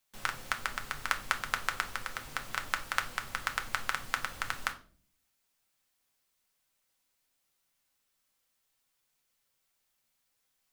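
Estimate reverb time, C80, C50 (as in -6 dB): 0.45 s, 19.5 dB, 14.5 dB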